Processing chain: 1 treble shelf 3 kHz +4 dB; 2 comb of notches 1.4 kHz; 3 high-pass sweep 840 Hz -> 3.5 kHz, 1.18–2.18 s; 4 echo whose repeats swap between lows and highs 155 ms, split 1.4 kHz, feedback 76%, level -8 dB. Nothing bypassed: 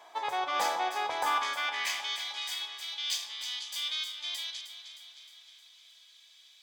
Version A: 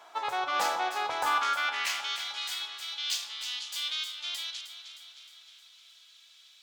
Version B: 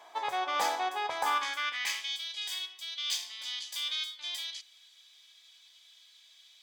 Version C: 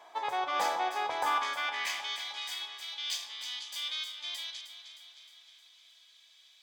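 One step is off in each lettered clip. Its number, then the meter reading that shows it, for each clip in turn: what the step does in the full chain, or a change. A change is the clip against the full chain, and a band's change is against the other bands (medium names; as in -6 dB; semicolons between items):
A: 2, loudness change +1.5 LU; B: 4, momentary loudness spread change -10 LU; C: 1, 8 kHz band -2.5 dB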